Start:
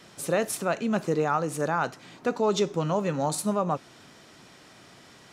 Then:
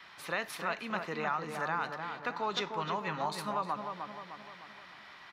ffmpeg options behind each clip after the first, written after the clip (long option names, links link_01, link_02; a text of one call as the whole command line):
ffmpeg -i in.wav -filter_complex "[0:a]equalizer=frequency=125:width_type=o:width=1:gain=-6,equalizer=frequency=250:width_type=o:width=1:gain=-5,equalizer=frequency=500:width_type=o:width=1:gain=-6,equalizer=frequency=1000:width_type=o:width=1:gain=11,equalizer=frequency=2000:width_type=o:width=1:gain=11,equalizer=frequency=4000:width_type=o:width=1:gain=8,equalizer=frequency=8000:width_type=o:width=1:gain=-12,acrossover=split=450|3000[link_01][link_02][link_03];[link_02]acompressor=threshold=-25dB:ratio=3[link_04];[link_01][link_04][link_03]amix=inputs=3:normalize=0,asplit=2[link_05][link_06];[link_06]adelay=305,lowpass=frequency=1600:poles=1,volume=-5dB,asplit=2[link_07][link_08];[link_08]adelay=305,lowpass=frequency=1600:poles=1,volume=0.55,asplit=2[link_09][link_10];[link_10]adelay=305,lowpass=frequency=1600:poles=1,volume=0.55,asplit=2[link_11][link_12];[link_12]adelay=305,lowpass=frequency=1600:poles=1,volume=0.55,asplit=2[link_13][link_14];[link_14]adelay=305,lowpass=frequency=1600:poles=1,volume=0.55,asplit=2[link_15][link_16];[link_16]adelay=305,lowpass=frequency=1600:poles=1,volume=0.55,asplit=2[link_17][link_18];[link_18]adelay=305,lowpass=frequency=1600:poles=1,volume=0.55[link_19];[link_05][link_07][link_09][link_11][link_13][link_15][link_17][link_19]amix=inputs=8:normalize=0,volume=-9dB" out.wav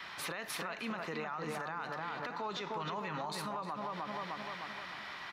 ffmpeg -i in.wav -af "acompressor=threshold=-38dB:ratio=6,alimiter=level_in=13dB:limit=-24dB:level=0:latency=1:release=35,volume=-13dB,volume=7dB" out.wav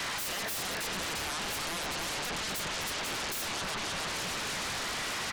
ffmpeg -i in.wav -af "aeval=exprs='0.0335*sin(PI/2*7.08*val(0)/0.0335)':channel_layout=same,volume=-2.5dB" out.wav